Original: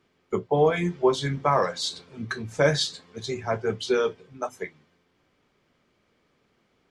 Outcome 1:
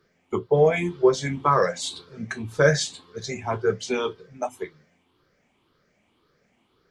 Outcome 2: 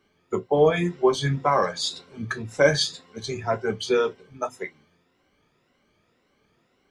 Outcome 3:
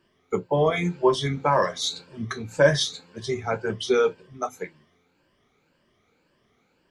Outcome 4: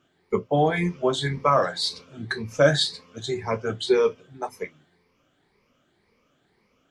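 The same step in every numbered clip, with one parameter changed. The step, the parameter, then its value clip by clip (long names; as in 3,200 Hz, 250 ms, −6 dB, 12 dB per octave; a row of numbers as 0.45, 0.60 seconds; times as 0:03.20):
rippled gain that drifts along the octave scale, ripples per octave: 0.59, 2.1, 1.3, 0.87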